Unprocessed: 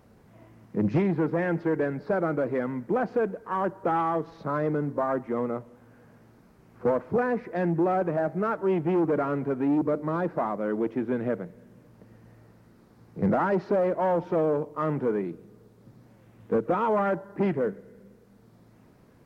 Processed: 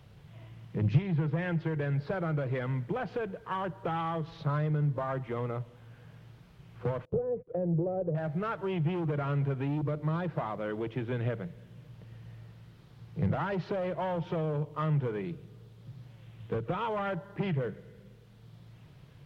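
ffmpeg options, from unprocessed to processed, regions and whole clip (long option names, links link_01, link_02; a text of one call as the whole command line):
ffmpeg -i in.wav -filter_complex "[0:a]asettb=1/sr,asplit=3[link_01][link_02][link_03];[link_01]atrim=end=7.054[link_04];[link_02]atrim=start=7.05:end=8.15,asetpts=PTS-STARTPTS,afade=type=in:duration=0.004:curve=qsin,afade=type=out:start_time=1.096:duration=0.004:curve=qsin,lowpass=frequency=500:width_type=q:width=4.9,agate=range=-29dB:threshold=-30dB:ratio=16:release=100:detection=peak[link_05];[link_03]atrim=start=8.146[link_06];[link_04][link_05]acrossfade=duration=0.004:curve1=hsin:curve2=qsin[link_07];[link_07][link_06]acrossfade=duration=0.004:curve1=qsin:curve2=hsin,lowshelf=frequency=180:width_type=q:width=3:gain=7,acrossover=split=130[link_08][link_09];[link_09]acompressor=threshold=-27dB:ratio=6[link_10];[link_08][link_10]amix=inputs=2:normalize=0,equalizer=frequency=3200:width_type=o:width=1:gain=14.5,volume=-3.5dB" out.wav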